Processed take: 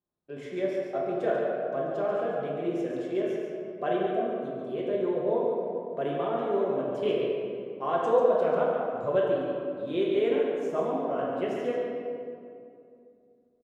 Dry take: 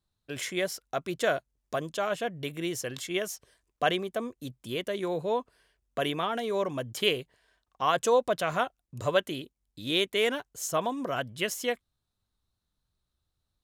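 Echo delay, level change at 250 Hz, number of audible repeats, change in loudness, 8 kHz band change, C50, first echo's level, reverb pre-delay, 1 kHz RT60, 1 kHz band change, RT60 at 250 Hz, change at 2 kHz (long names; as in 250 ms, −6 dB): 141 ms, +3.5 dB, 1, +1.5 dB, below −20 dB, −1.5 dB, −6.0 dB, 5 ms, 2.3 s, −0.5 dB, 3.2 s, −8.0 dB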